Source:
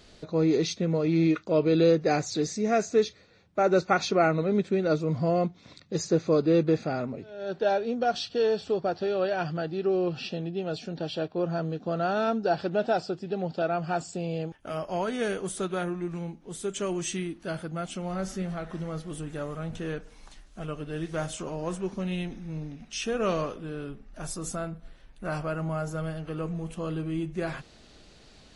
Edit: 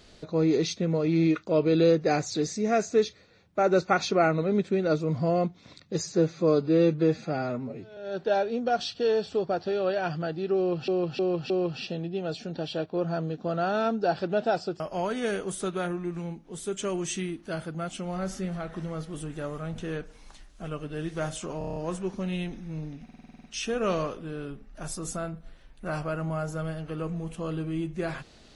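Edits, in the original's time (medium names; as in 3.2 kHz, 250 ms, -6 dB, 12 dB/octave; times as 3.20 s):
6.02–7.32 s: stretch 1.5×
9.92–10.23 s: loop, 4 plays
13.22–14.77 s: delete
21.55 s: stutter 0.03 s, 7 plays
22.83 s: stutter 0.05 s, 9 plays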